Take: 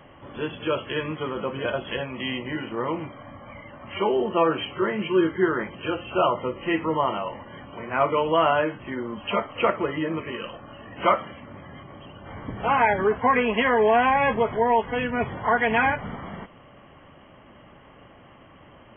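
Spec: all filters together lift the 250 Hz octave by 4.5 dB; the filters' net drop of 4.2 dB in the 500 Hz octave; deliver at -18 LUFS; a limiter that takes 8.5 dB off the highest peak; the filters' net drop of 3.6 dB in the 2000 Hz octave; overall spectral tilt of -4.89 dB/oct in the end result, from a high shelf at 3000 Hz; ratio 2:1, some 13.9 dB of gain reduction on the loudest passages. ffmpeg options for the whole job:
-af "equalizer=f=250:t=o:g=9,equalizer=f=500:t=o:g=-8.5,equalizer=f=2k:t=o:g=-3,highshelf=f=3k:g=-3.5,acompressor=threshold=-43dB:ratio=2,volume=23dB,alimiter=limit=-8dB:level=0:latency=1"

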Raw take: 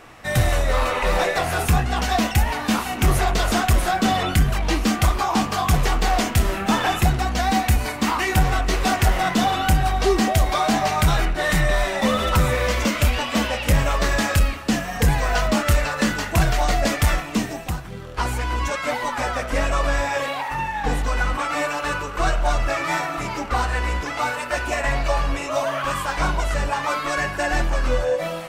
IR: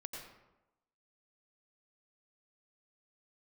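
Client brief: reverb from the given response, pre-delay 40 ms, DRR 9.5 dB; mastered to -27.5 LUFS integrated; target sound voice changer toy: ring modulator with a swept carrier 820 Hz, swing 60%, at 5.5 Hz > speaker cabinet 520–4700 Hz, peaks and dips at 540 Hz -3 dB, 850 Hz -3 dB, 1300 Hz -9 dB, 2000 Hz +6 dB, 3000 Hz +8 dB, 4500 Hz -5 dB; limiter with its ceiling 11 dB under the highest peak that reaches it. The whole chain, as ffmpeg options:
-filter_complex "[0:a]alimiter=limit=-21.5dB:level=0:latency=1,asplit=2[a][b];[1:a]atrim=start_sample=2205,adelay=40[c];[b][c]afir=irnorm=-1:irlink=0,volume=-7.5dB[d];[a][d]amix=inputs=2:normalize=0,aeval=exprs='val(0)*sin(2*PI*820*n/s+820*0.6/5.5*sin(2*PI*5.5*n/s))':c=same,highpass=520,equalizer=f=540:t=q:w=4:g=-3,equalizer=f=850:t=q:w=4:g=-3,equalizer=f=1.3k:t=q:w=4:g=-9,equalizer=f=2k:t=q:w=4:g=6,equalizer=f=3k:t=q:w=4:g=8,equalizer=f=4.5k:t=q:w=4:g=-5,lowpass=f=4.7k:w=0.5412,lowpass=f=4.7k:w=1.3066,volume=4dB"

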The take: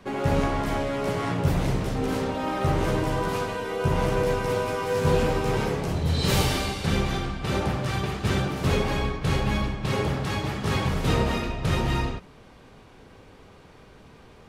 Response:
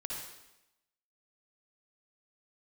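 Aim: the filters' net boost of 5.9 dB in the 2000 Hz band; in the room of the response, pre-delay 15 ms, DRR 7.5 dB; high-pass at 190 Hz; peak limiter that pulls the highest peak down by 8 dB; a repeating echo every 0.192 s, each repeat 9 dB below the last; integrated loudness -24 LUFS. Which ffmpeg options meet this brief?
-filter_complex "[0:a]highpass=190,equalizer=f=2k:t=o:g=7.5,alimiter=limit=-17.5dB:level=0:latency=1,aecho=1:1:192|384|576|768:0.355|0.124|0.0435|0.0152,asplit=2[a][b];[1:a]atrim=start_sample=2205,adelay=15[c];[b][c]afir=irnorm=-1:irlink=0,volume=-8dB[d];[a][d]amix=inputs=2:normalize=0,volume=2dB"

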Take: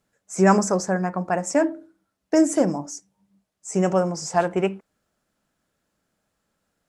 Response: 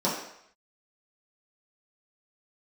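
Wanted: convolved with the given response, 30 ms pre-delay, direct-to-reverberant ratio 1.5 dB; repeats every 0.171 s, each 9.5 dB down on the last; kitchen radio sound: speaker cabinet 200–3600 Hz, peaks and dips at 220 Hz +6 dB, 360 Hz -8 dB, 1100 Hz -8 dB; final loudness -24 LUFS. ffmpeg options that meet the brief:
-filter_complex "[0:a]aecho=1:1:171|342|513|684:0.335|0.111|0.0365|0.012,asplit=2[a][b];[1:a]atrim=start_sample=2205,adelay=30[c];[b][c]afir=irnorm=-1:irlink=0,volume=-13.5dB[d];[a][d]amix=inputs=2:normalize=0,highpass=200,equalizer=f=220:t=q:w=4:g=6,equalizer=f=360:t=q:w=4:g=-8,equalizer=f=1.1k:t=q:w=4:g=-8,lowpass=f=3.6k:w=0.5412,lowpass=f=3.6k:w=1.3066,volume=-5.5dB"

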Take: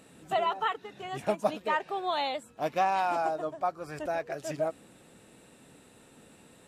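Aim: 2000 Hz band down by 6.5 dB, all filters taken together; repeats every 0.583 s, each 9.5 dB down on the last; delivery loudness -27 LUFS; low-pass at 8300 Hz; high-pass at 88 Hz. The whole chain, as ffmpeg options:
-af "highpass=88,lowpass=8.3k,equalizer=f=2k:t=o:g=-8.5,aecho=1:1:583|1166|1749|2332:0.335|0.111|0.0365|0.012,volume=5dB"

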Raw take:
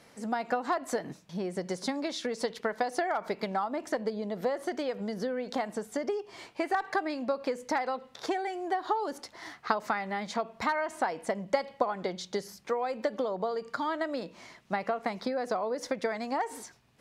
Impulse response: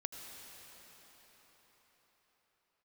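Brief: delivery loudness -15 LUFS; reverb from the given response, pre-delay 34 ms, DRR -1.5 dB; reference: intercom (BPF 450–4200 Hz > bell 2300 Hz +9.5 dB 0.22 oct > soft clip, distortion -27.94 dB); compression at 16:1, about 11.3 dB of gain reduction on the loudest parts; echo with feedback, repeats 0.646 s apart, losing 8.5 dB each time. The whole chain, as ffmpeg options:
-filter_complex "[0:a]acompressor=threshold=-32dB:ratio=16,aecho=1:1:646|1292|1938|2584:0.376|0.143|0.0543|0.0206,asplit=2[a][b];[1:a]atrim=start_sample=2205,adelay=34[c];[b][c]afir=irnorm=-1:irlink=0,volume=2.5dB[d];[a][d]amix=inputs=2:normalize=0,highpass=450,lowpass=4.2k,equalizer=f=2.3k:t=o:w=0.22:g=9.5,asoftclip=threshold=-20.5dB,volume=21dB"

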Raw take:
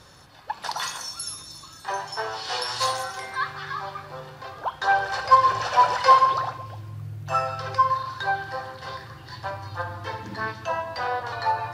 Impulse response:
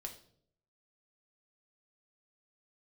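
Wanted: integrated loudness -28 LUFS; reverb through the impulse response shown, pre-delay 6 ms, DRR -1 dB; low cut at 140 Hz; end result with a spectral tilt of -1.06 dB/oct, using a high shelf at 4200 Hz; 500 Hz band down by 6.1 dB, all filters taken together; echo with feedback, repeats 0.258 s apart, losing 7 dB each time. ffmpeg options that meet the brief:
-filter_complex "[0:a]highpass=140,equalizer=f=500:t=o:g=-7.5,highshelf=f=4.2k:g=8,aecho=1:1:258|516|774|1032|1290:0.447|0.201|0.0905|0.0407|0.0183,asplit=2[a][b];[1:a]atrim=start_sample=2205,adelay=6[c];[b][c]afir=irnorm=-1:irlink=0,volume=4.5dB[d];[a][d]amix=inputs=2:normalize=0,volume=-6.5dB"

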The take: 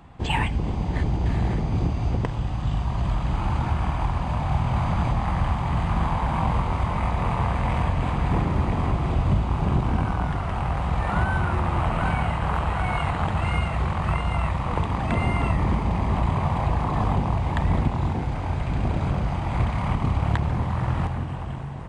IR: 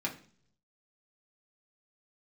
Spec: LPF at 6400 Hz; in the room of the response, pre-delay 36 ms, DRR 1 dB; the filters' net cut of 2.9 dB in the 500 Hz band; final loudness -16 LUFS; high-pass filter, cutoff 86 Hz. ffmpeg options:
-filter_complex "[0:a]highpass=86,lowpass=6.4k,equalizer=f=500:t=o:g=-4,asplit=2[a][b];[1:a]atrim=start_sample=2205,adelay=36[c];[b][c]afir=irnorm=-1:irlink=0,volume=-5dB[d];[a][d]amix=inputs=2:normalize=0,volume=8dB"

